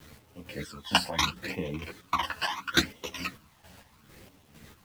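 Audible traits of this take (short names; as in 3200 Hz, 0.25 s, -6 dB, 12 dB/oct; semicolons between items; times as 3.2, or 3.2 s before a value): phasing stages 12, 0.74 Hz, lowest notch 370–1500 Hz; a quantiser's noise floor 10-bit, dither none; chopped level 2.2 Hz, depth 60%, duty 40%; a shimmering, thickened sound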